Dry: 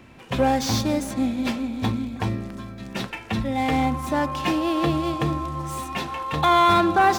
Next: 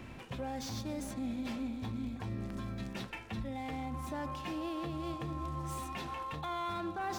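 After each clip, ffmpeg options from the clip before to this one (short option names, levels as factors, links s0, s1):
-af "areverse,acompressor=threshold=0.0355:ratio=6,areverse,lowshelf=f=89:g=6.5,alimiter=level_in=1.88:limit=0.0631:level=0:latency=1:release=317,volume=0.531,volume=0.891"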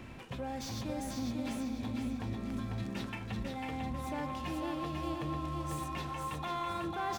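-af "aecho=1:1:497|994|1491|1988|2485:0.631|0.227|0.0818|0.0294|0.0106"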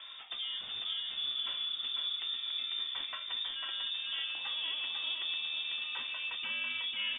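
-af "lowpass=f=3100:t=q:w=0.5098,lowpass=f=3100:t=q:w=0.6013,lowpass=f=3100:t=q:w=0.9,lowpass=f=3100:t=q:w=2.563,afreqshift=-3700"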